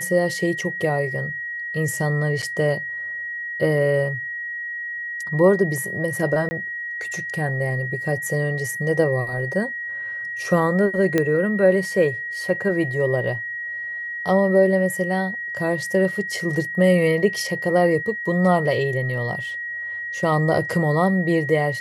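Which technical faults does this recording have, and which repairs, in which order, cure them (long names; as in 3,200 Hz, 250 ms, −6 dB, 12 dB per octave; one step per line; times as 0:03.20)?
whistle 1,900 Hz −27 dBFS
0:02.42–0:02.43: drop-out 6.6 ms
0:06.49–0:06.51: drop-out 20 ms
0:11.18: click −7 dBFS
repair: click removal
notch filter 1,900 Hz, Q 30
repair the gap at 0:02.42, 6.6 ms
repair the gap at 0:06.49, 20 ms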